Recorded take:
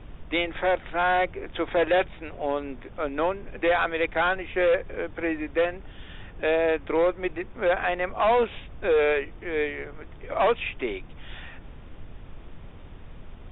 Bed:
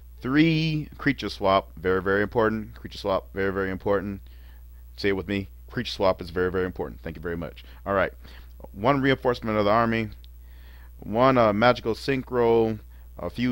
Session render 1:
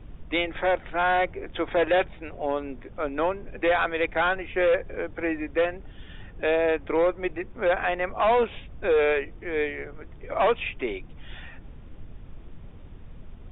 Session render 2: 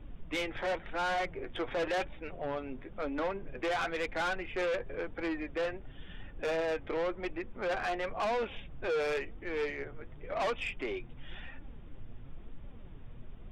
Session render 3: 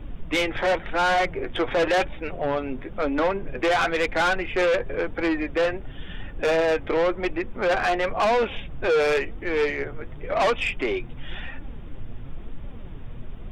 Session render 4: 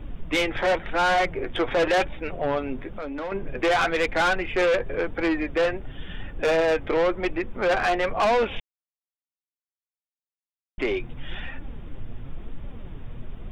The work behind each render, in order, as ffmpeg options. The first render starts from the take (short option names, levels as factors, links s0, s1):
-af "afftdn=nr=6:nf=-45"
-af "flanger=delay=3.4:depth=5.1:regen=51:speed=0.95:shape=sinusoidal,asoftclip=type=tanh:threshold=0.0376"
-af "volume=3.55"
-filter_complex "[0:a]asettb=1/sr,asplit=3[s0][s1][s2];[s0]atrim=end=2.894[s3];[s1]atrim=start=2.89:end=3.32,asetpts=PTS-STARTPTS,afade=t=in:d=0.004:c=qsin,afade=t=out:st=0.426:d=0.004:c=qsin,acompressor=threshold=0.0316:ratio=6:attack=3.2:release=140:knee=1:detection=peak[s4];[s2]atrim=start=3.316[s5];[s3][s4]acrossfade=d=0.004:c1=hsin:c2=qsin[s6];[s6][s5]acrossfade=d=0.004:c1=qsin:c2=hsin,asplit=3[s7][s8][s9];[s7]atrim=end=8.6,asetpts=PTS-STARTPTS,afade=t=out:st=8.596:d=0.004:c=hsin[s10];[s8]atrim=start=8.6:end=10.78,asetpts=PTS-STARTPTS,volume=0[s11];[s9]atrim=start=10.78,asetpts=PTS-STARTPTS,afade=t=in:d=0.004:c=hsin[s12];[s10][s11][s12]concat=n=3:v=0:a=1"